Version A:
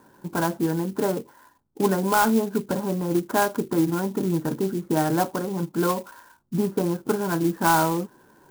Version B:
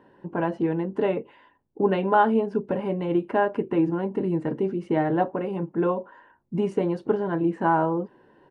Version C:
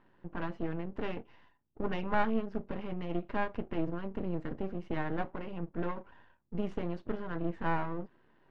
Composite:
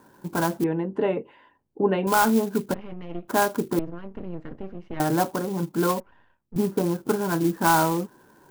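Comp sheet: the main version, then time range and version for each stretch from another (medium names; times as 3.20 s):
A
0.64–2.07 s: from B
2.74–3.28 s: from C
3.79–5.00 s: from C
6.00–6.56 s: from C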